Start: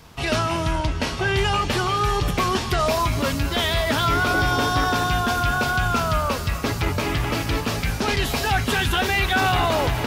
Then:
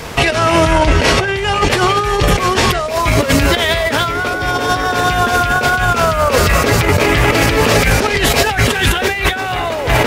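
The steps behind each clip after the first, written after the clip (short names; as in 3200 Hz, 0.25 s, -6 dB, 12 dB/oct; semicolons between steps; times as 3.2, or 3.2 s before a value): graphic EQ 500/2000/8000 Hz +9/+7/+4 dB; negative-ratio compressor -22 dBFS, ratio -0.5; maximiser +12.5 dB; gain -1 dB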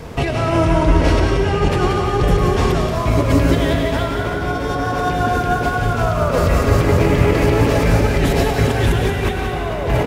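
tilt shelf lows +6.5 dB, about 820 Hz; on a send: loudspeakers at several distances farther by 35 m -10 dB, 62 m -7 dB; on the sum: plate-style reverb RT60 2.7 s, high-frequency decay 0.8×, pre-delay 0.115 s, DRR 4 dB; gain -8 dB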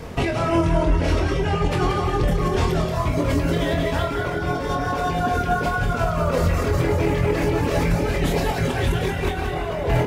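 limiter -8.5 dBFS, peak gain reduction 7 dB; reverb removal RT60 0.89 s; flutter echo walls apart 4.1 m, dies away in 0.24 s; gain -2.5 dB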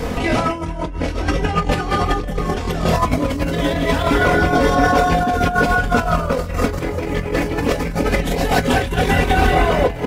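negative-ratio compressor -24 dBFS, ratio -0.5; comb 4 ms, depth 47%; gain +7 dB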